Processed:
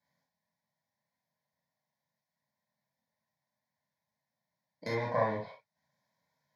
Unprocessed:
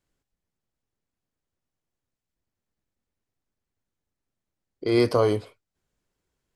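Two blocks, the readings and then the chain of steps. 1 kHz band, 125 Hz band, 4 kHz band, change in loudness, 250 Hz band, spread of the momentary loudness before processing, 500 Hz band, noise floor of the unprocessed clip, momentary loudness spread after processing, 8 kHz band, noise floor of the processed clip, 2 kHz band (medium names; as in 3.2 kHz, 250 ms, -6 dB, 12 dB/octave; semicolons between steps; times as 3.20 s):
-2.5 dB, -10.0 dB, -14.5 dB, -10.0 dB, -16.0 dB, 11 LU, -11.0 dB, under -85 dBFS, 14 LU, no reading, under -85 dBFS, -3.5 dB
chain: tracing distortion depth 0.32 ms; high-pass 130 Hz 24 dB/octave; low-pass that closes with the level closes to 1.9 kHz, closed at -20 dBFS; graphic EQ with 31 bands 630 Hz +5 dB, 1 kHz +9 dB, 2 kHz +4 dB; compression 3:1, threshold -25 dBFS, peak gain reduction 9 dB; static phaser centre 1.9 kHz, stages 8; gated-style reverb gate 90 ms flat, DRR -4.5 dB; trim -3 dB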